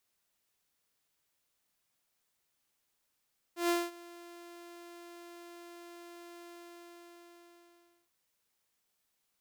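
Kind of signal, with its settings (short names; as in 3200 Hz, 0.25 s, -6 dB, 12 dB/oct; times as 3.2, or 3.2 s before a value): ADSR saw 345 Hz, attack 0.132 s, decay 0.215 s, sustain -22.5 dB, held 2.92 s, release 1.61 s -23.5 dBFS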